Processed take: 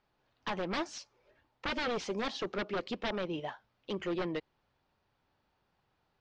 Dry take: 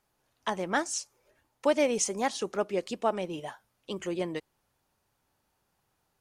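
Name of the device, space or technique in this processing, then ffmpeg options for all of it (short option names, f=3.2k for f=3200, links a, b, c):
synthesiser wavefolder: -af "aeval=exprs='0.0398*(abs(mod(val(0)/0.0398+3,4)-2)-1)':c=same,lowpass=f=4.5k:w=0.5412,lowpass=f=4.5k:w=1.3066"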